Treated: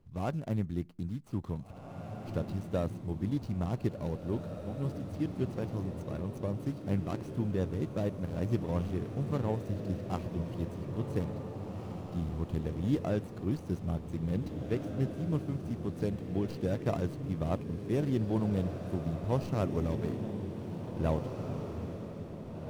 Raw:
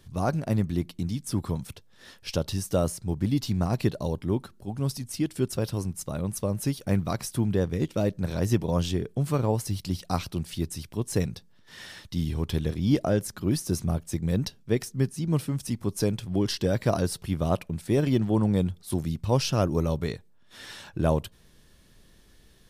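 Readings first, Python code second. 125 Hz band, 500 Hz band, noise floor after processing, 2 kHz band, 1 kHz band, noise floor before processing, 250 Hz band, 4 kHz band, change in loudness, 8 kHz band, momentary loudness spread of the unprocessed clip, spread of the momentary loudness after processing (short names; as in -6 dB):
-6.0 dB, -6.5 dB, -45 dBFS, -9.0 dB, -7.0 dB, -56 dBFS, -6.0 dB, -16.0 dB, -7.0 dB, under -20 dB, 8 LU, 7 LU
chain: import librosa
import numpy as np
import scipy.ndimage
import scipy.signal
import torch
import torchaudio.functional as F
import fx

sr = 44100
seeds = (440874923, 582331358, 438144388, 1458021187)

y = scipy.ndimage.median_filter(x, 25, mode='constant')
y = fx.echo_diffused(y, sr, ms=1932, feedback_pct=50, wet_db=-6.0)
y = F.gain(torch.from_numpy(y), -7.0).numpy()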